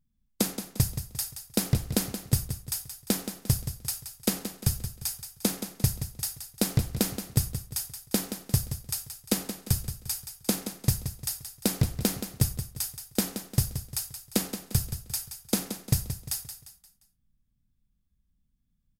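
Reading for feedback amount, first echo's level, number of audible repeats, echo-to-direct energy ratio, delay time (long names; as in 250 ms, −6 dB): 40%, −10.0 dB, 4, −9.5 dB, 175 ms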